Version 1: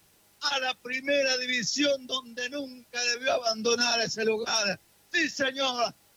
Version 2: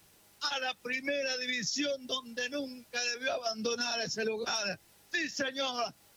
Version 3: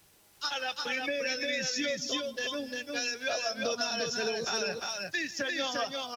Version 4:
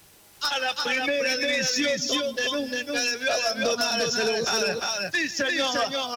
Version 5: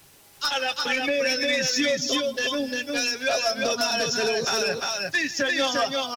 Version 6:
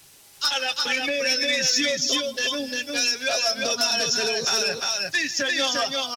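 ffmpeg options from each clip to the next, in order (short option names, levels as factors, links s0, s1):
-af "acompressor=threshold=0.0316:ratio=6"
-filter_complex "[0:a]equalizer=f=200:t=o:w=0.75:g=-2.5,asplit=2[s0][s1];[s1]aecho=0:1:156|250|349:0.106|0.106|0.708[s2];[s0][s2]amix=inputs=2:normalize=0"
-af "aeval=exprs='0.158*sin(PI/2*2*val(0)/0.158)':c=same,volume=0.841"
-af "aecho=1:1:7.4:0.35"
-af "equalizer=f=6700:w=0.34:g=7.5,volume=0.708"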